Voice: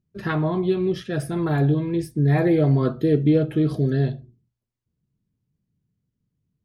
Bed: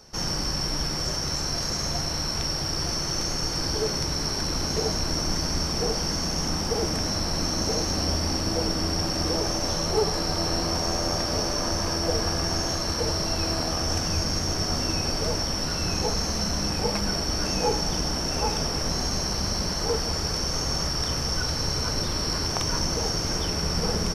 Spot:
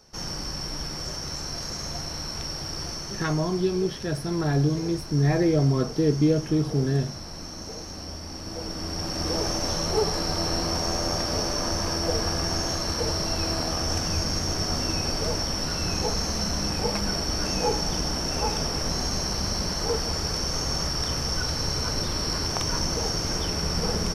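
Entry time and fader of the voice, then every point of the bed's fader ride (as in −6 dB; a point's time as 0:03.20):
2.95 s, −3.0 dB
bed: 0:02.82 −5 dB
0:03.64 −11.5 dB
0:08.28 −11.5 dB
0:09.41 −0.5 dB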